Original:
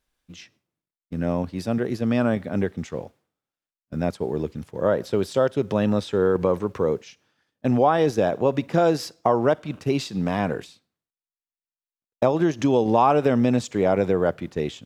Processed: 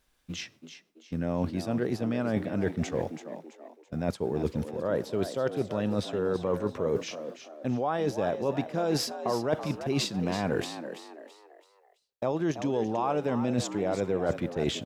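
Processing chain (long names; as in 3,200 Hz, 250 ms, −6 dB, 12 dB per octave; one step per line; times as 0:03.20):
reversed playback
downward compressor 12 to 1, threshold −31 dBFS, peak gain reduction 18.5 dB
reversed playback
echo with shifted repeats 332 ms, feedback 39%, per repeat +73 Hz, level −10.5 dB
level +6 dB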